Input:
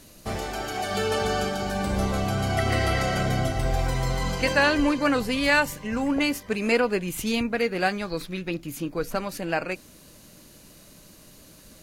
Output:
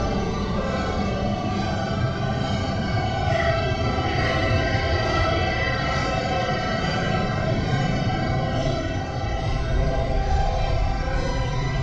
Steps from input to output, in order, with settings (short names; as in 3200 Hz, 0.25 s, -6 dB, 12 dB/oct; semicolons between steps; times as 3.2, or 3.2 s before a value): Paulstretch 6×, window 0.05 s, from 2.02; steep low-pass 6000 Hz 36 dB/oct; gain +1.5 dB